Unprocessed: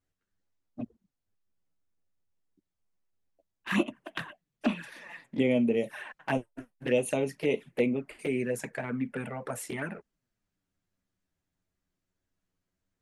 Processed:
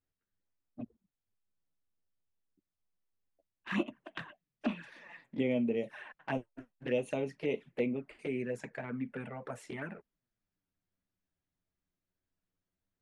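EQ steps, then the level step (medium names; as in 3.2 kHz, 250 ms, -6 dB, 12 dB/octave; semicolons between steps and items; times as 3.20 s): distance through air 87 m; -5.5 dB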